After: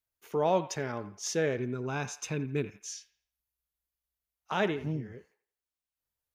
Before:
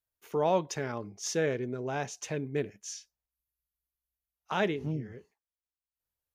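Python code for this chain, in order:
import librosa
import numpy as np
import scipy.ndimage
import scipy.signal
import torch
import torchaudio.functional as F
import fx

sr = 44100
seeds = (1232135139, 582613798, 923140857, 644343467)

y = fx.comb(x, sr, ms=0.8, depth=0.53, at=(1.57, 2.86))
y = fx.echo_wet_bandpass(y, sr, ms=85, feedback_pct=34, hz=1500.0, wet_db=-12)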